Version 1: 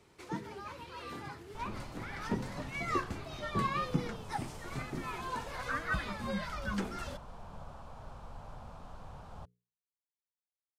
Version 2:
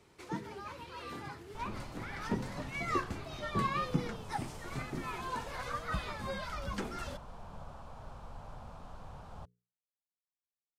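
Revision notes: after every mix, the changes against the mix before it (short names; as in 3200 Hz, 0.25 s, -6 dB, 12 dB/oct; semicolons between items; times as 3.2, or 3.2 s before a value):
speech -10.5 dB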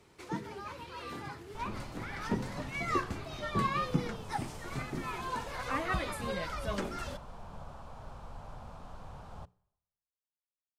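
speech: remove double band-pass 560 Hz, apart 2.9 oct; reverb: on, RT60 0.90 s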